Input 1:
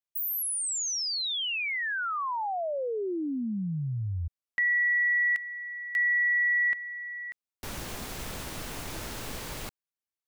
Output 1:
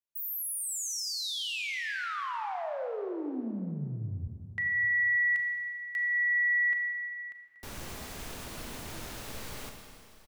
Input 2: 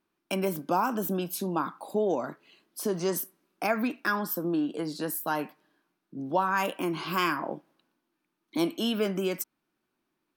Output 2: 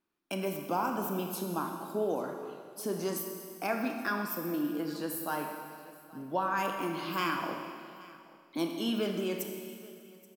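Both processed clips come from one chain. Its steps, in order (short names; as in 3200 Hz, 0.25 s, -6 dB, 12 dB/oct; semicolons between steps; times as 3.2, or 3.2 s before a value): on a send: echo 0.828 s -21.5 dB; on the sum: Schroeder reverb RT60 2.2 s, combs from 27 ms, DRR 3.5 dB; gain -5.5 dB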